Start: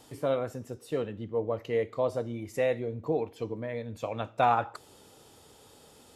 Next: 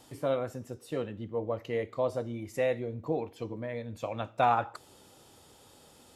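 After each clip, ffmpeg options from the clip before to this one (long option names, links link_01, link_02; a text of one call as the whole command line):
ffmpeg -i in.wav -af "bandreject=frequency=440:width=12,volume=-1dB" out.wav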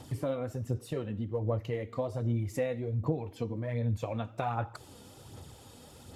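ffmpeg -i in.wav -af "equalizer=frequency=100:width_type=o:width=1.9:gain=12,acompressor=threshold=-32dB:ratio=6,aphaser=in_gain=1:out_gain=1:delay=4.3:decay=0.43:speed=1.3:type=sinusoidal,volume=1.5dB" out.wav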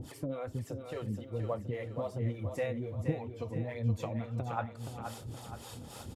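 ffmpeg -i in.wav -filter_complex "[0:a]acompressor=mode=upward:threshold=-36dB:ratio=2.5,acrossover=split=440[link_01][link_02];[link_01]aeval=exprs='val(0)*(1-1/2+1/2*cos(2*PI*3.6*n/s))':channel_layout=same[link_03];[link_02]aeval=exprs='val(0)*(1-1/2-1/2*cos(2*PI*3.6*n/s))':channel_layout=same[link_04];[link_03][link_04]amix=inputs=2:normalize=0,aecho=1:1:473|946|1419|1892|2365|2838:0.422|0.207|0.101|0.0496|0.0243|0.0119,volume=1.5dB" out.wav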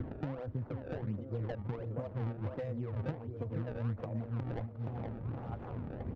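ffmpeg -i in.wav -filter_complex "[0:a]acrossover=split=150|2200|4700[link_01][link_02][link_03][link_04];[link_01]acompressor=threshold=-49dB:ratio=4[link_05];[link_02]acompressor=threshold=-49dB:ratio=4[link_06];[link_03]acompressor=threshold=-58dB:ratio=4[link_07];[link_04]acompressor=threshold=-56dB:ratio=4[link_08];[link_05][link_06][link_07][link_08]amix=inputs=4:normalize=0,acrusher=samples=24:mix=1:aa=0.000001:lfo=1:lforange=38.4:lforate=1.4,adynamicsmooth=sensitivity=5.5:basefreq=610,volume=9dB" out.wav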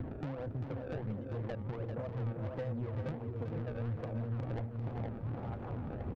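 ffmpeg -i in.wav -filter_complex "[0:a]asoftclip=type=tanh:threshold=-34.5dB,asplit=2[link_01][link_02];[link_02]aecho=0:1:395:0.422[link_03];[link_01][link_03]amix=inputs=2:normalize=0,volume=2dB" out.wav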